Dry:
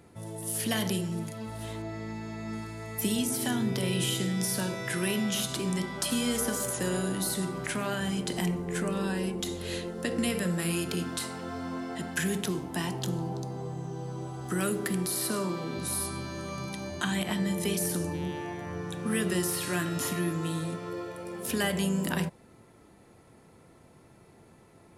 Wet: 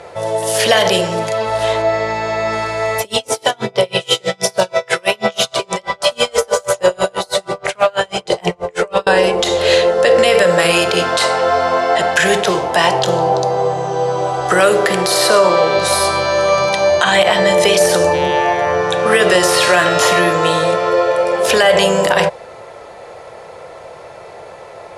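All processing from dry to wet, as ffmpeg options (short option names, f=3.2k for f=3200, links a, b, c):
-filter_complex "[0:a]asettb=1/sr,asplit=3[a][b][c];[a]atrim=end=3.004[d];[b]atrim=start=3:end=9.07,asetpts=PTS-STARTPTS,afade=t=in:d=0.004:c=qsin,afade=t=out:st=6.066:d=0.004:c=qsin,equalizer=f=1.7k:t=o:w=0.25:g=-6,aphaser=in_gain=1:out_gain=1:delay=2.3:decay=0.33:speed=1.3:type=sinusoidal,aeval=exprs='val(0)*pow(10,-36*(0.5-0.5*cos(2*PI*6.2*n/s))/20)':c=same[e];[c]atrim=start=9.066[f];[d][e]acrossfade=d=0.004:c1=hsin:c2=qsin[g];[g][f]acrossfade=d=0.004:c1=qsin:c2=hsin,lowpass=5.7k,lowshelf=f=380:t=q:w=3:g=-12.5,alimiter=level_in=24dB:limit=-1dB:release=50:level=0:latency=1,volume=-1dB"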